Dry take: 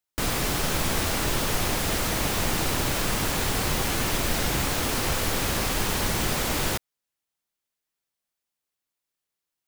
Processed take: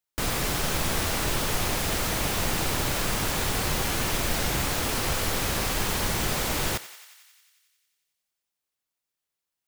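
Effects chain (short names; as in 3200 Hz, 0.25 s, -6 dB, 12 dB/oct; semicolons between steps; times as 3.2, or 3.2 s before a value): bell 270 Hz -2 dB; on a send: thinning echo 90 ms, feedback 74%, high-pass 710 Hz, level -15 dB; on the sum: gain -1 dB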